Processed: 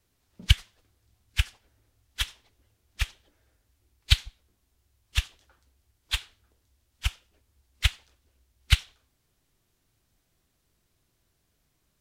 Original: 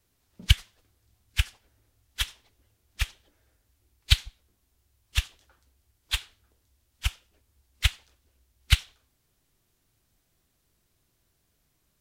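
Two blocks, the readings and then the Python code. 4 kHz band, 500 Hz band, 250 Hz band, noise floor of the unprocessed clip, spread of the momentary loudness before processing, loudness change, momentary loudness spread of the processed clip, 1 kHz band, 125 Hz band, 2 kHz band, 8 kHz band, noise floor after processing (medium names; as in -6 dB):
-0.5 dB, 0.0 dB, 0.0 dB, -73 dBFS, 9 LU, 0.0 dB, 9 LU, 0.0 dB, 0.0 dB, 0.0 dB, -1.5 dB, -74 dBFS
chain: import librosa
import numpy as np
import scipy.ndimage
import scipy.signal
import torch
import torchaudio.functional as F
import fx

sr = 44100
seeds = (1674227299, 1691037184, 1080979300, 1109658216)

y = fx.high_shelf(x, sr, hz=10000.0, db=-4.5)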